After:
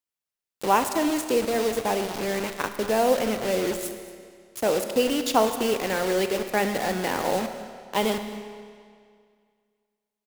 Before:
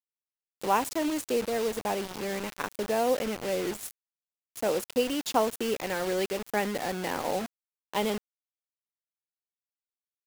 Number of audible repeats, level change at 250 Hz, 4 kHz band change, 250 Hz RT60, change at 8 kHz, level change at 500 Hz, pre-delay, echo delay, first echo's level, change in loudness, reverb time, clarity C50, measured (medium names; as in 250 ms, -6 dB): 1, +5.0 dB, +5.0 dB, 2.1 s, +5.0 dB, +5.0 dB, 29 ms, 229 ms, -19.0 dB, +5.0 dB, 2.1 s, 8.5 dB